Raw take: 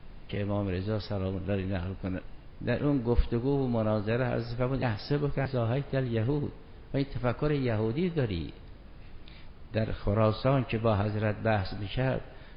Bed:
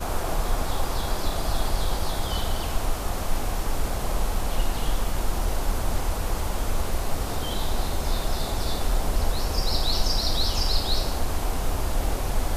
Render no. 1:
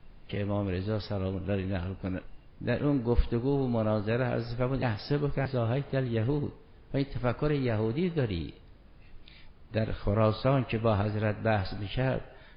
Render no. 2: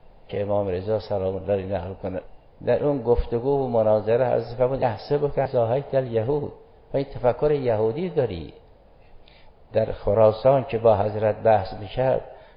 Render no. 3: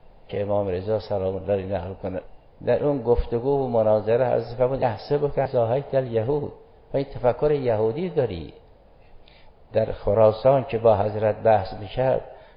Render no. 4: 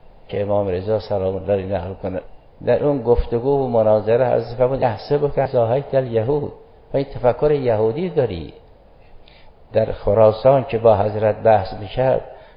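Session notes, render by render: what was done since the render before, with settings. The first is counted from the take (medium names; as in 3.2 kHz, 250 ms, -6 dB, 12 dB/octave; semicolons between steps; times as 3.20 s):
noise print and reduce 6 dB
high-order bell 630 Hz +12 dB 1.3 oct
no audible change
trim +4.5 dB; peak limiter -2 dBFS, peak gain reduction 1 dB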